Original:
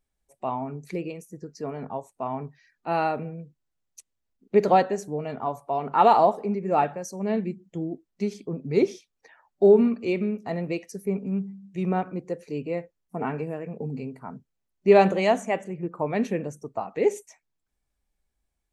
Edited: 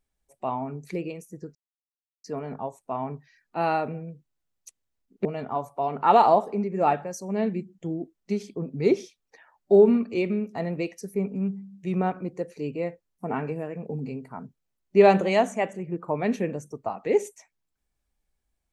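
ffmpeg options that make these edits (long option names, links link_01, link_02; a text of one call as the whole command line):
ffmpeg -i in.wav -filter_complex "[0:a]asplit=3[link_01][link_02][link_03];[link_01]atrim=end=1.55,asetpts=PTS-STARTPTS,afade=type=out:start_time=1.546:duration=0.004:curve=hsin,apad=pad_dur=0.69[link_04];[link_02]atrim=start=1.55:end=4.562,asetpts=PTS-STARTPTS,afade=type=in:duration=0.004:curve=hsin[link_05];[link_03]atrim=start=5.158[link_06];[link_04][link_05]concat=n=2:v=0:a=1[link_07];[link_07][link_06]acrossfade=duration=0.004:curve1=hsin:curve2=hsin" out.wav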